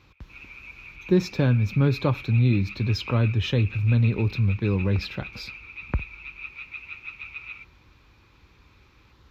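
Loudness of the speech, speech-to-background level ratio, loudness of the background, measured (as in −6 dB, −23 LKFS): −24.0 LKFS, 14.5 dB, −38.5 LKFS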